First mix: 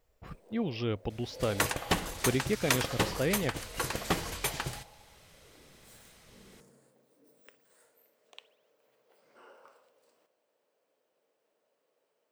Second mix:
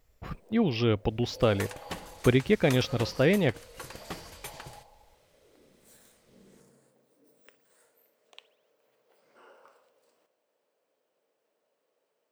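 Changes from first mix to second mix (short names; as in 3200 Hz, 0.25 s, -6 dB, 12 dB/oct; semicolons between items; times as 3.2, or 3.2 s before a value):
speech +7.0 dB; second sound -10.0 dB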